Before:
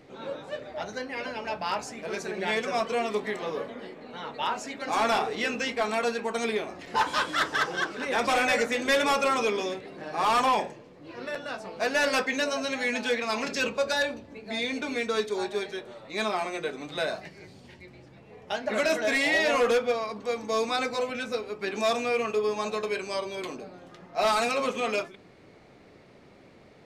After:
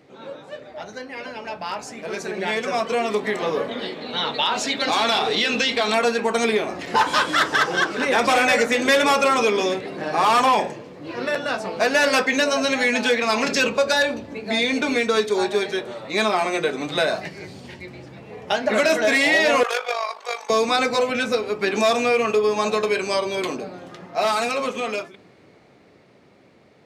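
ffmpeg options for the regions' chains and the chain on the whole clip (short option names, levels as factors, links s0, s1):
-filter_complex "[0:a]asettb=1/sr,asplit=3[s0][s1][s2];[s0]atrim=end=3.714[s3];[s1]atrim=start=3.71:end=5.94,asetpts=PTS-STARTPTS,afade=t=in:d=0.004:c=qsin,afade=t=out:st=2.226:d=0.004:c=qsin,equalizer=f=3700:w=1.9:g=13,acompressor=threshold=0.0447:ratio=2.5:attack=3.2:release=140:knee=1:detection=peak[s4];[s2]atrim=start=5.936[s5];[s3][s4]acrossfade=d=0.004:c1=hsin:c2=qsin[s6];[s6][s5]acrossfade=d=0.004:c1=qsin:c2=hsin,asettb=1/sr,asplit=3[s7][s8][s9];[s7]atrim=end=19.634[s10];[s8]atrim=start=19.63:end=20.5,asetpts=PTS-STARTPTS,afade=t=in:d=0.004:c=qsin,afade=t=out:st=0.866:d=0.004:c=qsin,highpass=f=670:w=0.5412,highpass=f=670:w=1.3066,tremolo=f=50:d=0.667[s11];[s9]atrim=start=20.496[s12];[s10][s11]acrossfade=d=0.004:c1=hsin:c2=qsin[s13];[s13][s12]acrossfade=d=0.004:c1=qsin:c2=hsin,acompressor=threshold=0.0355:ratio=2,highpass=81,dynaudnorm=f=170:g=31:m=3.55"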